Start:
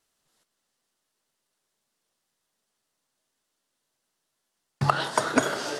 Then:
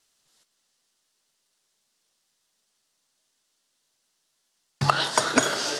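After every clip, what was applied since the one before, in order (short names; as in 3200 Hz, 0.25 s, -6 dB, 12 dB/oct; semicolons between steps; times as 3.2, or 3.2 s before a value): bell 5300 Hz +8.5 dB 2.4 oct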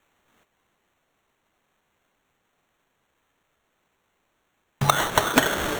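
sample-and-hold 9×; gain +1.5 dB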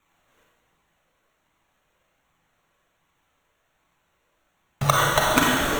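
flange 1.3 Hz, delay 0.8 ms, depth 1.3 ms, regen +33%; reverb RT60 1.3 s, pre-delay 34 ms, DRR -1 dB; gain +2 dB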